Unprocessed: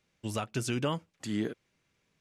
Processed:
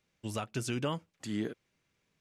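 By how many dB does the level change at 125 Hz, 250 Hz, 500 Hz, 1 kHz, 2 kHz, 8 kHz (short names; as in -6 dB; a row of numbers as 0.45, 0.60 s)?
-2.5, -2.5, -2.5, -2.5, -2.5, -2.5 dB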